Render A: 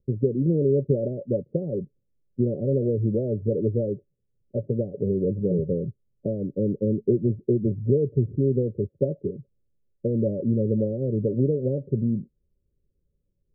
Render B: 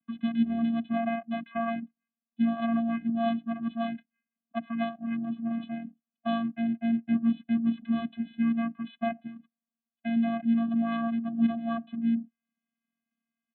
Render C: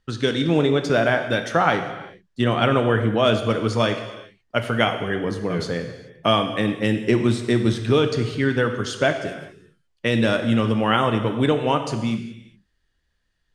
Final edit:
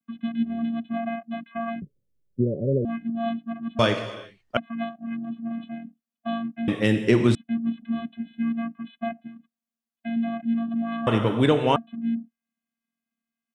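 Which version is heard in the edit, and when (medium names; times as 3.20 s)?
B
1.82–2.85 s: from A
3.79–4.57 s: from C
6.68–7.35 s: from C
11.07–11.76 s: from C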